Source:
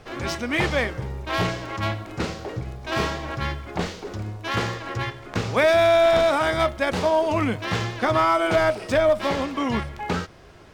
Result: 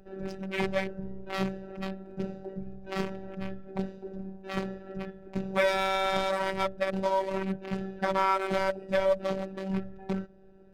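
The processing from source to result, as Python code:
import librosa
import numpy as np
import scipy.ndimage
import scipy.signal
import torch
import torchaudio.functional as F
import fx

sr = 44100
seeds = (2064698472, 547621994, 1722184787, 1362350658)

y = fx.wiener(x, sr, points=41)
y = fx.robotise(y, sr, hz=192.0)
y = y * 10.0 ** (-2.0 / 20.0)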